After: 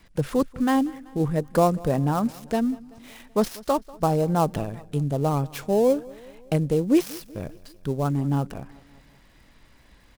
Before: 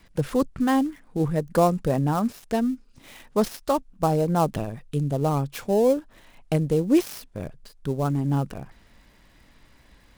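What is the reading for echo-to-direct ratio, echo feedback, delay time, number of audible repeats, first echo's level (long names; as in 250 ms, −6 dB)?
−20.5 dB, 57%, 191 ms, 3, −22.0 dB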